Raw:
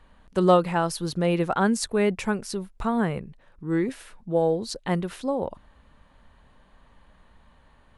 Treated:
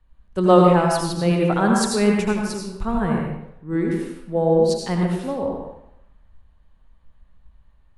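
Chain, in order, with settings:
low-shelf EQ 210 Hz +4 dB
convolution reverb RT60 0.95 s, pre-delay 75 ms, DRR −0.5 dB
multiband upward and downward expander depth 40%

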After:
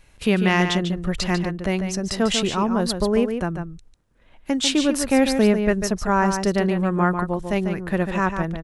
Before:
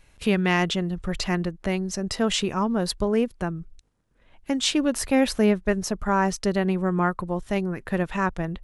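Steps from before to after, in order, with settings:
slap from a distant wall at 25 metres, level −7 dB
level +2.5 dB

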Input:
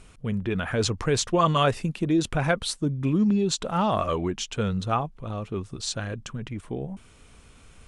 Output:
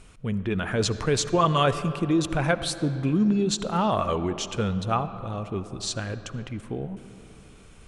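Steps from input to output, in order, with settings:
on a send: high-shelf EQ 6,300 Hz −10.5 dB + convolution reverb RT60 3.1 s, pre-delay 35 ms, DRR 12 dB

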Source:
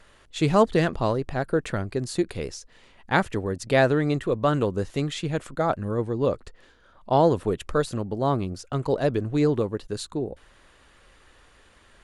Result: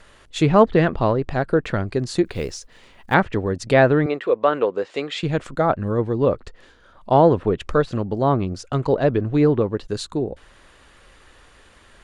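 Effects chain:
treble cut that deepens with the level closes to 2,600 Hz, closed at −19.5 dBFS
0:02.25–0:03.14: floating-point word with a short mantissa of 4 bits
0:04.06–0:05.23: loudspeaker in its box 430–8,200 Hz, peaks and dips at 480 Hz +5 dB, 2,400 Hz +3 dB, 6,100 Hz −6 dB
level +5 dB

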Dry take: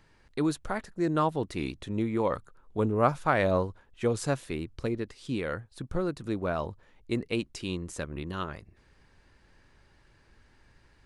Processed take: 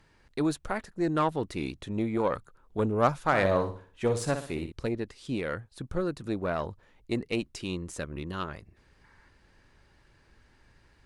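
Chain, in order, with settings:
0:03.26–0:04.72: flutter between parallel walls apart 10.5 metres, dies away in 0.42 s
harmonic generator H 6 −25 dB, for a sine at −10 dBFS
0:09.04–0:09.28: gain on a spectral selection 820–2,300 Hz +7 dB

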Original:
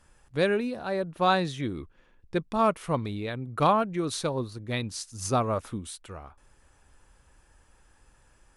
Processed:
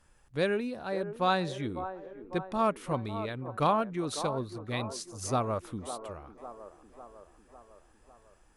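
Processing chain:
delay with a band-pass on its return 551 ms, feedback 57%, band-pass 610 Hz, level −9.5 dB
level −4 dB

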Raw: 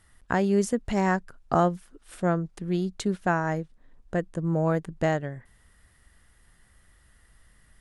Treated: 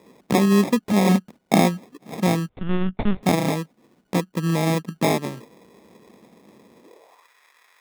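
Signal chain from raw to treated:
0:04.17–0:04.89: running median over 25 samples
parametric band 3,000 Hz +13.5 dB 1.9 octaves
in parallel at −1 dB: downward compressor, threshold −31 dBFS, peak gain reduction 15 dB
on the sum: decimation without filtering 30×
high-pass filter sweep 200 Hz → 1,500 Hz, 0:06.75–0:07.29
0:02.49–0:03.23: linear-prediction vocoder at 8 kHz pitch kept
level −1.5 dB

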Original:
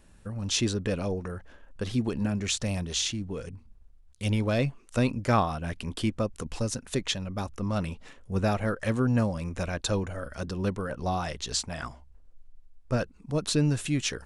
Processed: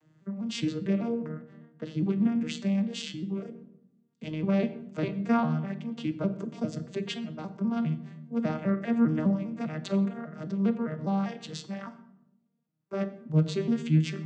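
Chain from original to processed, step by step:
vocoder with an arpeggio as carrier major triad, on D#3, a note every 201 ms
dynamic equaliser 2,800 Hz, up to +5 dB, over −53 dBFS, Q 1.1
on a send: convolution reverb RT60 0.80 s, pre-delay 13 ms, DRR 10 dB

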